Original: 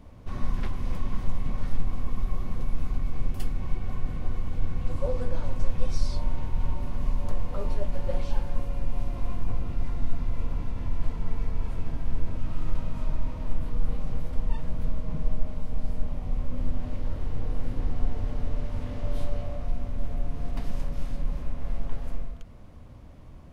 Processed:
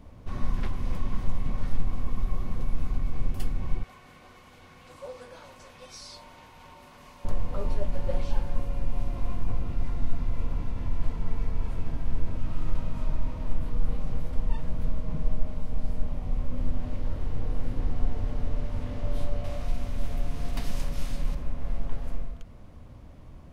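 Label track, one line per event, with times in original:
3.830000	7.250000	high-pass filter 1,400 Hz 6 dB per octave
19.440000	21.350000	high-shelf EQ 2,000 Hz +11 dB

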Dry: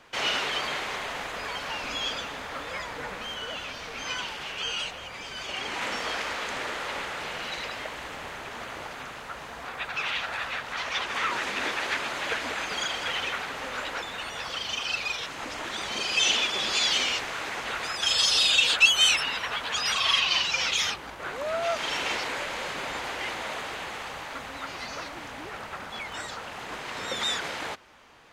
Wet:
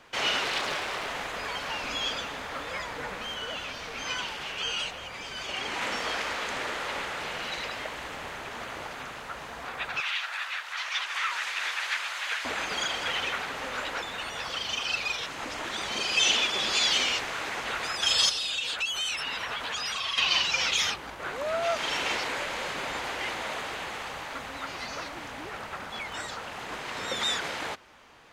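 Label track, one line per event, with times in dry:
0.450000	1.070000	highs frequency-modulated by the lows depth 0.6 ms
10.000000	12.450000	high-pass filter 1,200 Hz
18.290000	20.180000	downward compressor 4 to 1, threshold −29 dBFS

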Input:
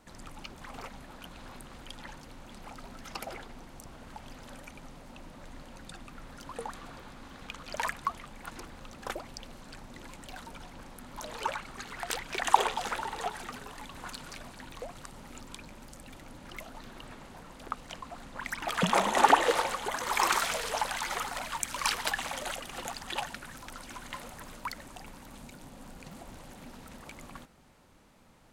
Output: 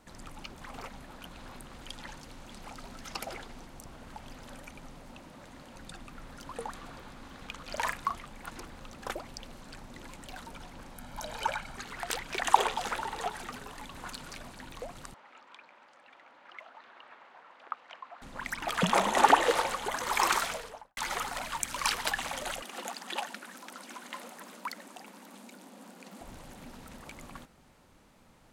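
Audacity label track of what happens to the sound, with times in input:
1.810000	3.670000	parametric band 6,000 Hz +3.5 dB 2.1 octaves
5.180000	5.760000	high-pass filter 100 Hz 6 dB per octave
7.630000	8.200000	double-tracking delay 38 ms −7.5 dB
10.950000	11.770000	comb filter 1.3 ms, depth 49%
15.140000	18.220000	band-pass filter 800–2,300 Hz
20.310000	20.970000	fade out and dull
22.620000	26.210000	elliptic high-pass filter 190 Hz

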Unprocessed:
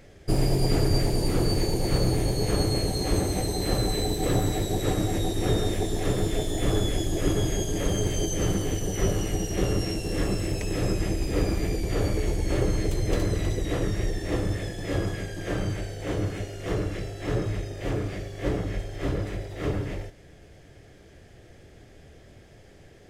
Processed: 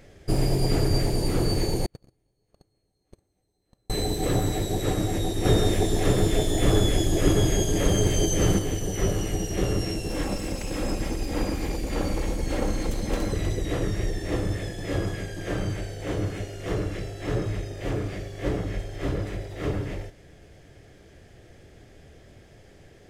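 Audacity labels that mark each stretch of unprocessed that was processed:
1.860000	3.900000	noise gate −17 dBFS, range −48 dB
5.450000	8.590000	clip gain +4 dB
10.090000	13.330000	lower of the sound and its delayed copy delay 3.7 ms

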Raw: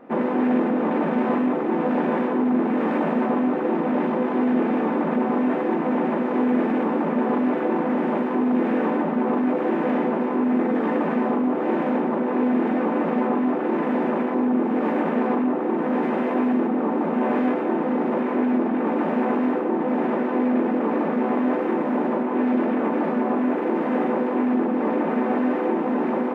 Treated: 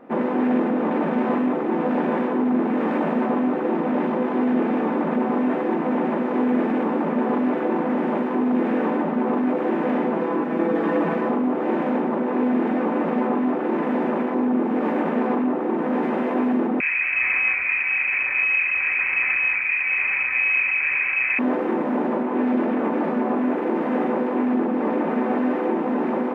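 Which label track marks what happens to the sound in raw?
10.160000	11.290000	comb filter 6.1 ms
16.800000	21.390000	voice inversion scrambler carrier 2,800 Hz

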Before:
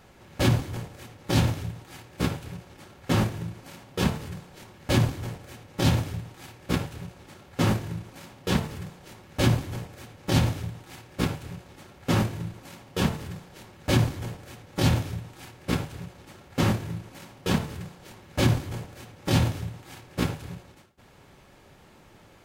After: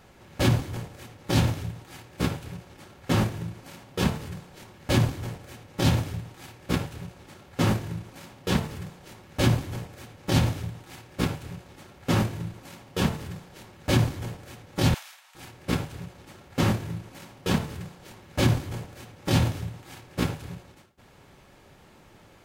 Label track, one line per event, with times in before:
14.940000	15.350000	Bessel high-pass filter 1,300 Hz, order 8

